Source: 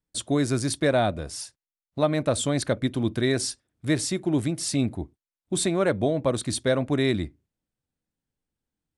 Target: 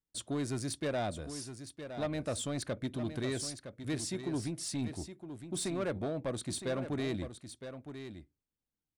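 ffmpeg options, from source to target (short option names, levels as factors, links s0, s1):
-af "asoftclip=type=tanh:threshold=0.106,aecho=1:1:963:0.316,volume=0.355"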